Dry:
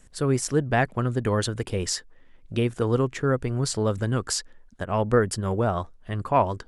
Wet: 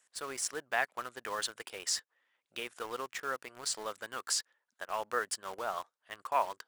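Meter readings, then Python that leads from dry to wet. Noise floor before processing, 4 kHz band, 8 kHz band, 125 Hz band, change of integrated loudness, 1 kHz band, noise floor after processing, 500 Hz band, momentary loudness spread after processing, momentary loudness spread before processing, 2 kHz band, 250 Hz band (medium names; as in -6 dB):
-53 dBFS, -4.0 dB, -4.5 dB, -38.5 dB, -10.5 dB, -7.5 dB, under -85 dBFS, -15.5 dB, 9 LU, 7 LU, -4.5 dB, -26.0 dB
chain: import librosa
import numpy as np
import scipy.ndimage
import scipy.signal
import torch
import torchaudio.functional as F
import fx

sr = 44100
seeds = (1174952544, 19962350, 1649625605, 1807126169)

p1 = scipy.signal.sosfilt(scipy.signal.butter(2, 930.0, 'highpass', fs=sr, output='sos'), x)
p2 = fx.quant_dither(p1, sr, seeds[0], bits=6, dither='none')
p3 = p1 + (p2 * librosa.db_to_amplitude(-3.0))
y = p3 * librosa.db_to_amplitude(-9.0)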